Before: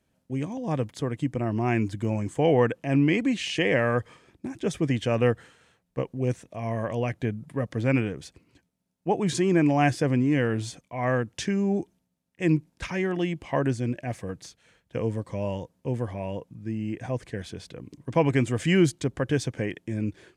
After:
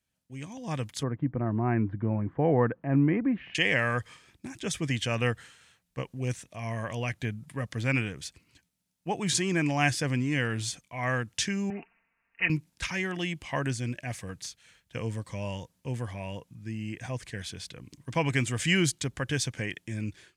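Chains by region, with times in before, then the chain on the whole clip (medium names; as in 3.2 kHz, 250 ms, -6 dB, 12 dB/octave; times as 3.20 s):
1.03–3.55 s: low-pass 1.5 kHz 24 dB/octave + peaking EQ 300 Hz +5 dB 2.6 oct
11.70–12.50 s: tilt EQ +4 dB/octave + careless resampling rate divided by 8×, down none, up filtered + comb 4.4 ms, depth 58%
whole clip: amplifier tone stack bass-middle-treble 5-5-5; level rider gain up to 9.5 dB; trim +2.5 dB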